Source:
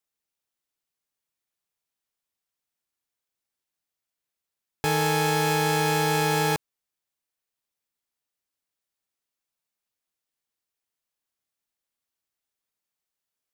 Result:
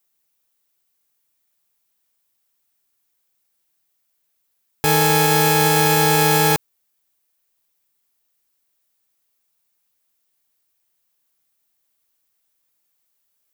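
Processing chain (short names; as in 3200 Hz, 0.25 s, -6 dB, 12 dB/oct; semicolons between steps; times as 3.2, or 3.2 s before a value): high shelf 11000 Hz +12 dB; in parallel at +3 dB: limiter -14 dBFS, peak gain reduction 7 dB; on the sum: gain +1 dB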